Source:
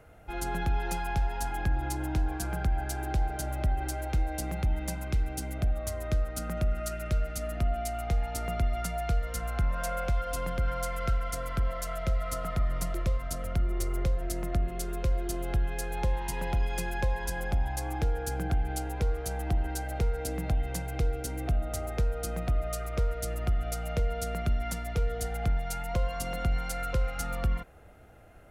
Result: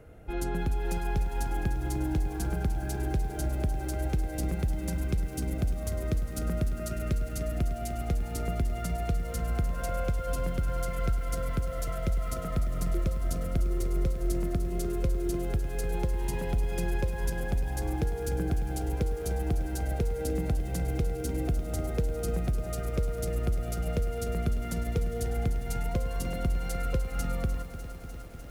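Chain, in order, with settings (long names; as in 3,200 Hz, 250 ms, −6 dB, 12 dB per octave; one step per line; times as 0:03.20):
downward compressor 8 to 1, threshold −29 dBFS, peak gain reduction 7.5 dB
low shelf with overshoot 580 Hz +6 dB, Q 1.5
feedback echo at a low word length 300 ms, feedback 80%, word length 8 bits, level −11.5 dB
level −1.5 dB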